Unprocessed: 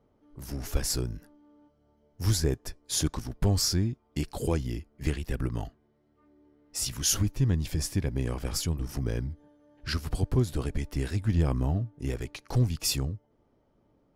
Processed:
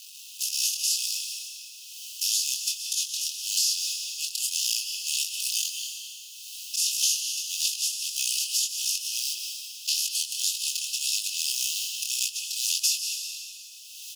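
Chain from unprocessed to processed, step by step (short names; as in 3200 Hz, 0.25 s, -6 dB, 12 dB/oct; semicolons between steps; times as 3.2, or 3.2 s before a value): per-bin compression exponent 0.4; gate -24 dBFS, range -33 dB; auto swell 0.279 s; AGC gain up to 12.5 dB; companded quantiser 6-bit; chorus 1.7 Hz, delay 18 ms, depth 7.7 ms; brick-wall FIR high-pass 2500 Hz; speakerphone echo 0.18 s, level -9 dB; plate-style reverb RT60 1.4 s, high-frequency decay 0.7×, pre-delay 0.105 s, DRR 7.5 dB; three-band squash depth 100%; gain +2.5 dB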